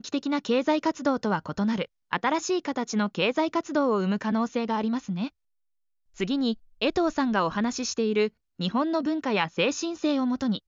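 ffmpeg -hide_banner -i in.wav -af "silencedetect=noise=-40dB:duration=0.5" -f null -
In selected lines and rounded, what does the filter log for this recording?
silence_start: 5.28
silence_end: 6.18 | silence_duration: 0.90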